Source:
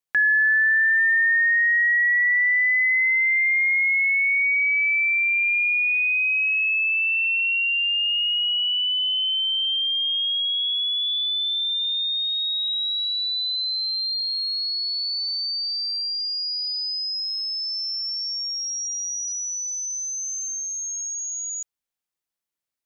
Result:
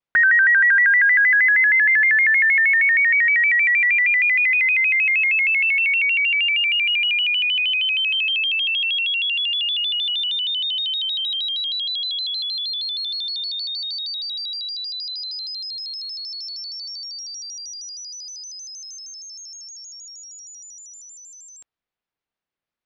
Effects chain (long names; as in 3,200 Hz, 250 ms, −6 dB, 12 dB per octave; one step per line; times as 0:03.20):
high-frequency loss of the air 250 metres
pitch modulation by a square or saw wave square 6.4 Hz, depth 160 cents
level +6 dB